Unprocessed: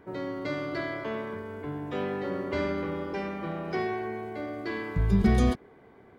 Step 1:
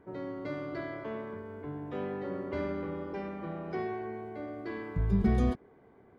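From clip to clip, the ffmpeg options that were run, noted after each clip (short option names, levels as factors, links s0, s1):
-af "highshelf=f=2200:g=-10.5,volume=0.631"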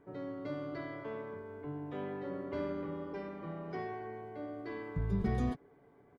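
-af "aecho=1:1:7:0.42,volume=0.596"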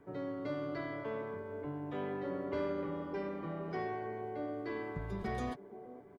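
-filter_complex "[0:a]acrossover=split=390|640[s0][s1][s2];[s0]acompressor=threshold=0.00794:ratio=6[s3];[s1]aecho=1:1:472|944|1416|1888|2360|2832:0.562|0.276|0.135|0.0662|0.0324|0.0159[s4];[s3][s4][s2]amix=inputs=3:normalize=0,volume=1.33"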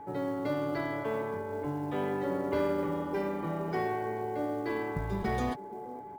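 -af "acrusher=bits=8:mode=log:mix=0:aa=0.000001,aeval=exprs='val(0)+0.00316*sin(2*PI*850*n/s)':c=same,volume=2.11"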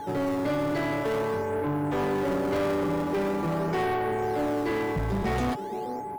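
-filter_complex "[0:a]asplit=2[s0][s1];[s1]acrusher=samples=17:mix=1:aa=0.000001:lfo=1:lforange=27.2:lforate=0.44,volume=0.266[s2];[s0][s2]amix=inputs=2:normalize=0,asoftclip=type=tanh:threshold=0.0282,volume=2.51"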